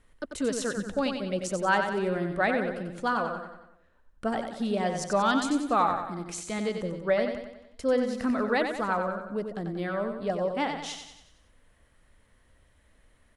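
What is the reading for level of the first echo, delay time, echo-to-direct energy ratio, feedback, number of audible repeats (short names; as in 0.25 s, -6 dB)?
-6.5 dB, 92 ms, -5.0 dB, 50%, 5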